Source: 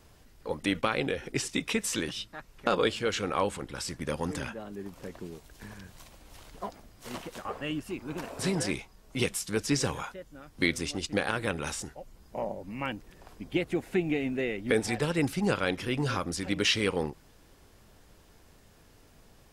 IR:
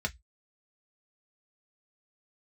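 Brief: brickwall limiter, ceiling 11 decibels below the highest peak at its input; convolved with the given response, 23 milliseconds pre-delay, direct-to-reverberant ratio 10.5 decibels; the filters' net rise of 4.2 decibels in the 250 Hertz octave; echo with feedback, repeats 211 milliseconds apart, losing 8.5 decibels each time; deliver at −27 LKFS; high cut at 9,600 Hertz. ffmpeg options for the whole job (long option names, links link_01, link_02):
-filter_complex "[0:a]lowpass=9600,equalizer=frequency=250:width_type=o:gain=5.5,alimiter=limit=-19.5dB:level=0:latency=1,aecho=1:1:211|422|633|844:0.376|0.143|0.0543|0.0206,asplit=2[link_01][link_02];[1:a]atrim=start_sample=2205,adelay=23[link_03];[link_02][link_03]afir=irnorm=-1:irlink=0,volume=-15.5dB[link_04];[link_01][link_04]amix=inputs=2:normalize=0,volume=4.5dB"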